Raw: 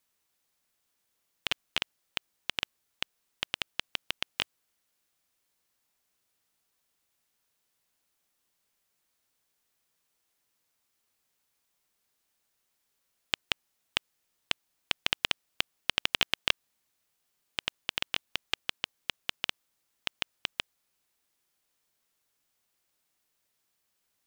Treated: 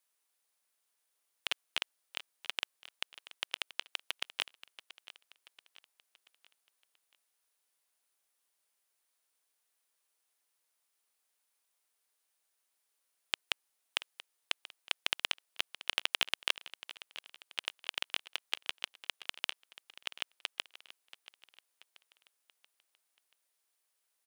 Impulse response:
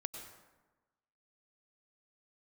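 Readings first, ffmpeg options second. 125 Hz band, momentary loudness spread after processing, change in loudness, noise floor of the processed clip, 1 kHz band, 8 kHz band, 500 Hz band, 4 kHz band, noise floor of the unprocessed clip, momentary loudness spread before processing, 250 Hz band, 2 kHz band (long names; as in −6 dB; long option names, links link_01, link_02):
below −20 dB, 21 LU, −4.0 dB, −81 dBFS, −4.0 dB, −2.5 dB, −5.5 dB, −4.0 dB, −78 dBFS, 10 LU, −12.0 dB, −4.0 dB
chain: -af "highpass=430,equalizer=frequency=9600:width=5.4:gain=8,aecho=1:1:682|1364|2046|2728:0.158|0.0713|0.0321|0.0144,volume=-4dB"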